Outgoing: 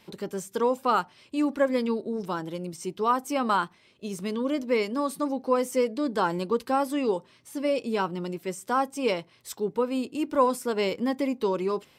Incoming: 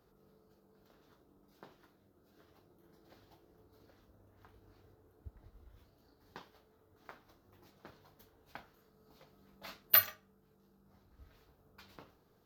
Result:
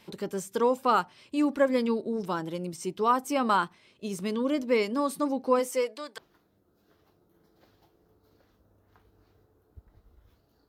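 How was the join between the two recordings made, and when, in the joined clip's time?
outgoing
5.59–6.18 s: high-pass 280 Hz -> 1.3 kHz
6.18 s: go over to incoming from 1.67 s

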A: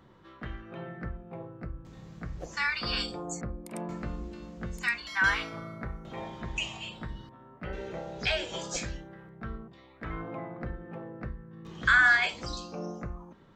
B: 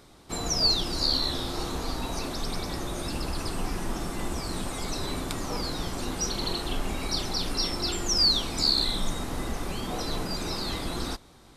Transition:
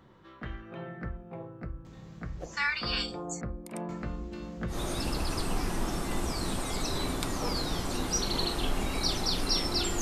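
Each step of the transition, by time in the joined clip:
A
4.32–4.79 s: waveshaping leveller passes 1
4.73 s: go over to B from 2.81 s, crossfade 0.12 s

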